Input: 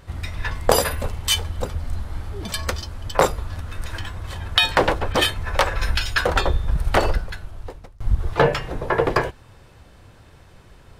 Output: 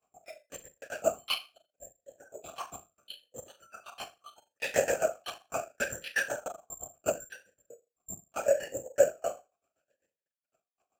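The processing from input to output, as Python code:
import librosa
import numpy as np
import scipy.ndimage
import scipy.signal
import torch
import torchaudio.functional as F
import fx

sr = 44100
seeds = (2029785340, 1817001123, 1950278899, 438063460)

p1 = fx.granulator(x, sr, seeds[0], grain_ms=82.0, per_s=7.8, spray_ms=16.0, spread_st=0)
p2 = fx.rider(p1, sr, range_db=5, speed_s=2.0)
p3 = p1 + (p2 * 10.0 ** (-2.5 / 20.0))
p4 = fx.noise_reduce_blind(p3, sr, reduce_db=23)
p5 = fx.step_gate(p4, sr, bpm=181, pattern='xx.x..xx..xxxxx', floor_db=-60.0, edge_ms=4.5)
p6 = 10.0 ** (-12.0 / 20.0) * np.tanh(p5 / 10.0 ** (-12.0 / 20.0))
p7 = p6 + fx.room_flutter(p6, sr, wall_m=6.4, rt60_s=0.27, dry=0)
p8 = fx.lpc_vocoder(p7, sr, seeds[1], excitation='whisper', order=8)
p9 = (np.kron(scipy.signal.resample_poly(p8, 1, 6), np.eye(6)[0]) * 6)[:len(p8)]
p10 = fx.vowel_sweep(p9, sr, vowels='a-e', hz=0.74)
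y = p10 * 10.0 ** (5.5 / 20.0)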